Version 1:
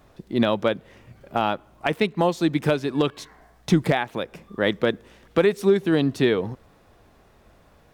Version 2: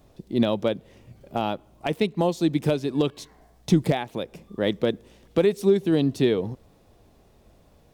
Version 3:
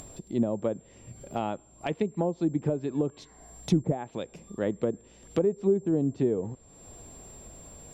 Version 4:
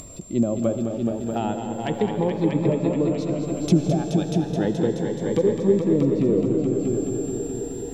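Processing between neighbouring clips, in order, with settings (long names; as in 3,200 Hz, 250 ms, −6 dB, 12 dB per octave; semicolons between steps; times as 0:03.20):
parametric band 1,500 Hz −10 dB 1.5 octaves
treble cut that deepens with the level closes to 710 Hz, closed at −17.5 dBFS; steady tone 7,400 Hz −55 dBFS; upward compression, threshold −31 dBFS; level −4.5 dB
echo machine with several playback heads 213 ms, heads all three, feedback 59%, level −8.5 dB; comb and all-pass reverb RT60 4.5 s, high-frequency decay 0.8×, pre-delay 45 ms, DRR 8 dB; phaser whose notches keep moving one way rising 0.32 Hz; level +5.5 dB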